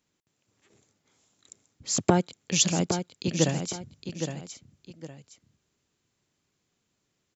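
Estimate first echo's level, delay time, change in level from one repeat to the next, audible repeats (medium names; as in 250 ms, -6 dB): -8.0 dB, 813 ms, -10.0 dB, 2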